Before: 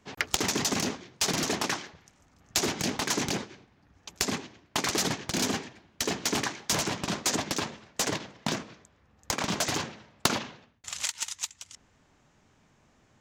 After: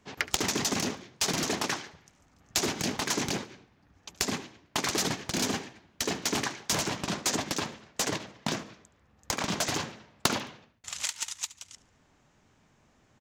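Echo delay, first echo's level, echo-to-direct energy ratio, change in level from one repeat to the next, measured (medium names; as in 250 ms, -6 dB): 72 ms, -19.0 dB, -18.5 dB, -9.0 dB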